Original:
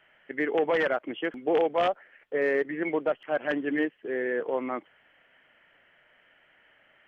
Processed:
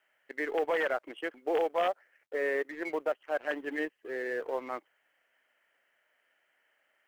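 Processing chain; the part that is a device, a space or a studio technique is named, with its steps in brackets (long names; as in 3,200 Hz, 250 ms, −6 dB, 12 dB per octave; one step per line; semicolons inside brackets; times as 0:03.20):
phone line with mismatched companding (band-pass filter 380–3,600 Hz; mu-law and A-law mismatch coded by A)
level −2.5 dB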